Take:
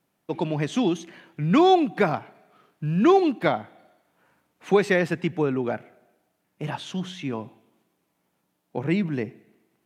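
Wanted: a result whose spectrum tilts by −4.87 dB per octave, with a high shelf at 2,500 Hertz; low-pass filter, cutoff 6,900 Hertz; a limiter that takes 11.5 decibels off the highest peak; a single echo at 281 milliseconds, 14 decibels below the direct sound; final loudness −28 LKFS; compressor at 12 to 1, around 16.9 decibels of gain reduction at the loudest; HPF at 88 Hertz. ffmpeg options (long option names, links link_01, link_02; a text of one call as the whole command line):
ffmpeg -i in.wav -af "highpass=88,lowpass=6900,highshelf=frequency=2500:gain=3.5,acompressor=threshold=-30dB:ratio=12,alimiter=level_in=6dB:limit=-24dB:level=0:latency=1,volume=-6dB,aecho=1:1:281:0.2,volume=11.5dB" out.wav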